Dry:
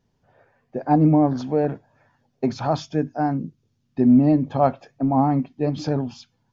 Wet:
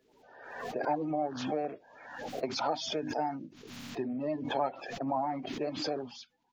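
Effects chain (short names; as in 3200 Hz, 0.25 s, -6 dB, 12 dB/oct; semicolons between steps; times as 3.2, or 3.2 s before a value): bin magnitudes rounded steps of 30 dB; high shelf 3700 Hz +10.5 dB; compressor 4:1, threshold -23 dBFS, peak gain reduction 10.5 dB; three-band isolator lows -19 dB, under 310 Hz, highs -15 dB, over 4000 Hz; backwards sustainer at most 52 dB/s; gain -3.5 dB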